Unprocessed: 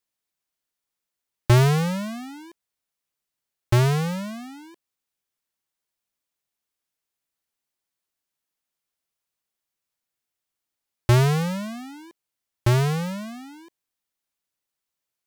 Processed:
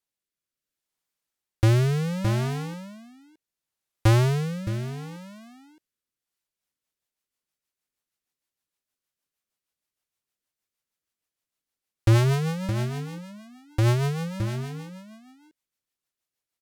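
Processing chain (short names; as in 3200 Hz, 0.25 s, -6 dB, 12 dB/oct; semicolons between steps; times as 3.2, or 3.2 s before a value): echo 0.566 s -8.5 dB; rotary speaker horn 0.75 Hz, later 7 Hz, at 5.52; speed mistake 48 kHz file played as 44.1 kHz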